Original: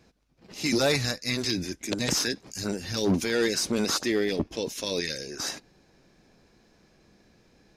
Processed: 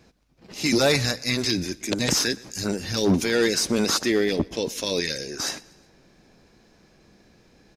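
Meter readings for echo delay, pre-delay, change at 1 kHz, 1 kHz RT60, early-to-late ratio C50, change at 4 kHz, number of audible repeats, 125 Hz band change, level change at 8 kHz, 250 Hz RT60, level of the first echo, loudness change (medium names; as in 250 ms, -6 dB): 121 ms, no reverb, +4.0 dB, no reverb, no reverb, +4.0 dB, 2, +4.0 dB, +4.0 dB, no reverb, -23.0 dB, +4.0 dB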